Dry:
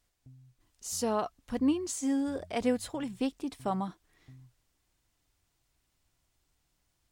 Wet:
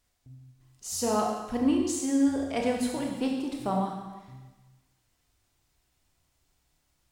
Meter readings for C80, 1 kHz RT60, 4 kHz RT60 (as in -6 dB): 5.0 dB, 1.2 s, 1.1 s